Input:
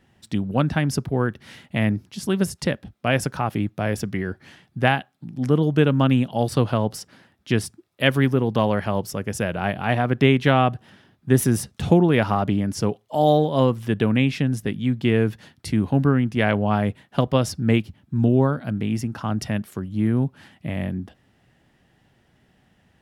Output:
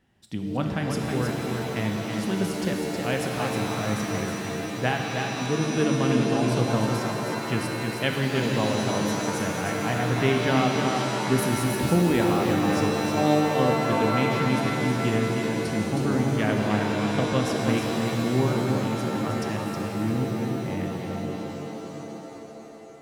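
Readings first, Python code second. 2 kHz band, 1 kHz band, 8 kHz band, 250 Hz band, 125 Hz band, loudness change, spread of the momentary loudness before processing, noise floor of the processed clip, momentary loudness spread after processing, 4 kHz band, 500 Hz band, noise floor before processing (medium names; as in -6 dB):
-1.0 dB, -1.0 dB, +1.0 dB, -2.5 dB, -4.5 dB, -3.0 dB, 11 LU, -38 dBFS, 9 LU, 0.0 dB, -2.0 dB, -63 dBFS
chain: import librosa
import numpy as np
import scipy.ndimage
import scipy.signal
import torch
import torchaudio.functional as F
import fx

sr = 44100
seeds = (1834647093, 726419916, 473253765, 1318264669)

y = x + 10.0 ** (-5.5 / 20.0) * np.pad(x, (int(316 * sr / 1000.0), 0))[:len(x)]
y = fx.rev_shimmer(y, sr, seeds[0], rt60_s=3.9, semitones=7, shimmer_db=-2, drr_db=2.5)
y = y * librosa.db_to_amplitude(-7.5)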